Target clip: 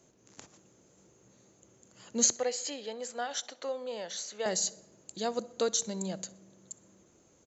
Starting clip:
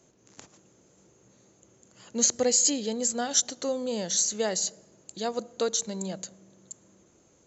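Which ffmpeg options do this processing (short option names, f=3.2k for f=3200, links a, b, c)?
-filter_complex "[0:a]asettb=1/sr,asplit=3[a][b][c];[a]atrim=end=2.334[d];[b]atrim=start=2.33:end=4.46,asetpts=PTS-STARTPTS,afade=t=in:d=0.004:c=qsin,afade=t=out:st=2.126:d=0.004:c=qsin,acrossover=split=470 3700:gain=0.141 1 0.141[e][f][g];[e][f][g]amix=inputs=3:normalize=0[h];[c]atrim=start=4.456[i];[d][h]acrossfade=d=0.004:c1=hsin:c2=qsin[j];[j][i]acrossfade=d=0.004:c1=qsin:c2=hsin,aecho=1:1:63|126|189:0.0708|0.0283|0.0113,volume=-2dB"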